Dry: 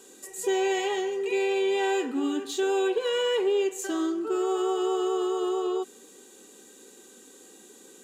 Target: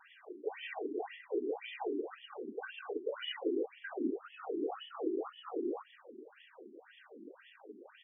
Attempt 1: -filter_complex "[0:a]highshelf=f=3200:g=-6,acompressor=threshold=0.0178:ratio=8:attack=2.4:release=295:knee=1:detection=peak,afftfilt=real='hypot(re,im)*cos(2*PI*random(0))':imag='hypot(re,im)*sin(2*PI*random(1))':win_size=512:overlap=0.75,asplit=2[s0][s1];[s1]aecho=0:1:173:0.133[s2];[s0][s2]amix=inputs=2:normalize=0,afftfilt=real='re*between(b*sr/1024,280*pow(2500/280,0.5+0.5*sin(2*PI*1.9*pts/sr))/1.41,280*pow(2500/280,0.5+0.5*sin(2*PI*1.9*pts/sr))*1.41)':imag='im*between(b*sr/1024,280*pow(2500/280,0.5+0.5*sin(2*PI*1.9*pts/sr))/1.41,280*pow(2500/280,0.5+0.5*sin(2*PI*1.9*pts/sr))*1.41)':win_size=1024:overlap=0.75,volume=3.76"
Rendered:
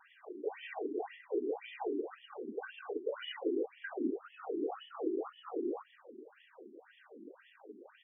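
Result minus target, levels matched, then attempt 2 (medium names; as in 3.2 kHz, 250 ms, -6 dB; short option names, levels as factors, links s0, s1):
4 kHz band -4.0 dB
-filter_complex "[0:a]highshelf=f=3200:g=4,acompressor=threshold=0.0178:ratio=8:attack=2.4:release=295:knee=1:detection=peak,afftfilt=real='hypot(re,im)*cos(2*PI*random(0))':imag='hypot(re,im)*sin(2*PI*random(1))':win_size=512:overlap=0.75,asplit=2[s0][s1];[s1]aecho=0:1:173:0.133[s2];[s0][s2]amix=inputs=2:normalize=0,afftfilt=real='re*between(b*sr/1024,280*pow(2500/280,0.5+0.5*sin(2*PI*1.9*pts/sr))/1.41,280*pow(2500/280,0.5+0.5*sin(2*PI*1.9*pts/sr))*1.41)':imag='im*between(b*sr/1024,280*pow(2500/280,0.5+0.5*sin(2*PI*1.9*pts/sr))/1.41,280*pow(2500/280,0.5+0.5*sin(2*PI*1.9*pts/sr))*1.41)':win_size=1024:overlap=0.75,volume=3.76"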